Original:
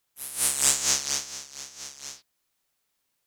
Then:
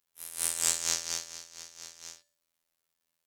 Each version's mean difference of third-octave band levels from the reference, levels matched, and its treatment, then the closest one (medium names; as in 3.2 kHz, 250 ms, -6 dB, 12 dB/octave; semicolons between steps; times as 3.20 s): 3.0 dB: robot voice 83.4 Hz; feedback comb 53 Hz, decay 0.57 s, harmonics odd, mix 40%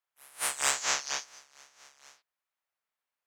6.5 dB: three-band isolator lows -17 dB, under 540 Hz, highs -13 dB, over 2.5 kHz; spectral noise reduction 11 dB; trim +5 dB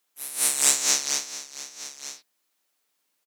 1.5 dB: high-pass 200 Hz 24 dB/octave; comb 6.6 ms, depth 31%; trim +1.5 dB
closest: third